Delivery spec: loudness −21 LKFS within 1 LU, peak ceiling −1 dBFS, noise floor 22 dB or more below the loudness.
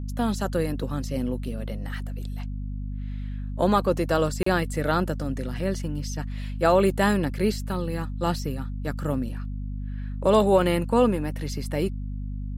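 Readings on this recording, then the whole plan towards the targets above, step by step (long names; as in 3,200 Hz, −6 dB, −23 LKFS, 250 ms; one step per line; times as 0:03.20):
number of dropouts 1; longest dropout 34 ms; mains hum 50 Hz; hum harmonics up to 250 Hz; level of the hum −29 dBFS; integrated loudness −26.5 LKFS; sample peak −7.0 dBFS; target loudness −21.0 LKFS
→ repair the gap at 0:04.43, 34 ms
mains-hum notches 50/100/150/200/250 Hz
level +5.5 dB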